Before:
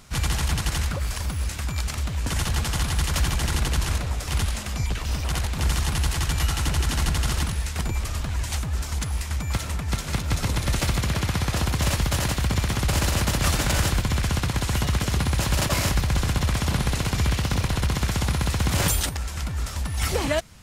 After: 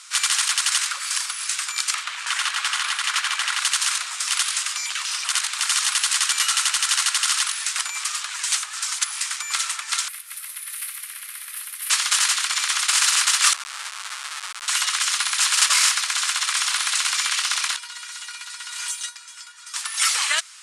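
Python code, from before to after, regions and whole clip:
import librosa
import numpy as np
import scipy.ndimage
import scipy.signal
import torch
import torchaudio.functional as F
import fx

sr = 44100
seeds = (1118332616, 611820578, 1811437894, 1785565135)

y = fx.chain(x, sr, fx.bass_treble(bass_db=-8, treble_db=-11),
    fx.env_flatten(amount_pct=50), at=(1.94, 3.6))
y = fx.chain(y, sr, fx.highpass(hz=160.0, slope=12),
    fx.low_shelf(hz=460.0, db=5.5), at=(7.6, 8.07))
y = fx.chain(y, sr, fx.curve_eq(hz=(130.0, 820.0, 1400.0, 2000.0, 6900.0, 12000.0), db=(0, -24, -18, -13, -26, 9)),
    fx.mod_noise(seeds[0], snr_db=32), at=(10.08, 11.9))
y = fx.chain(y, sr, fx.brickwall_bandstop(low_hz=440.0, high_hz=12000.0),
    fx.schmitt(flips_db=-26.0),
    fx.ensemble(), at=(13.53, 14.68))
y = fx.chain(y, sr, fx.comb_fb(f0_hz=480.0, decay_s=0.17, harmonics='all', damping=0.0, mix_pct=90),
    fx.doppler_dist(depth_ms=0.1), at=(17.76, 19.74))
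y = scipy.signal.sosfilt(scipy.signal.ellip(3, 1.0, 60, [1200.0, 9500.0], 'bandpass', fs=sr, output='sos'), y)
y = fx.high_shelf(y, sr, hz=4500.0, db=8.5)
y = F.gain(torch.from_numpy(y), 7.0).numpy()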